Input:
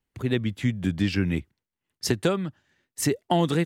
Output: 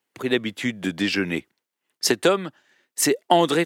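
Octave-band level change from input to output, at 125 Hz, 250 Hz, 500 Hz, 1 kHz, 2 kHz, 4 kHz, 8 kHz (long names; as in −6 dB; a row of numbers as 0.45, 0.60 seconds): −7.5, +1.0, +6.0, +7.5, +7.5, +7.5, +7.5 decibels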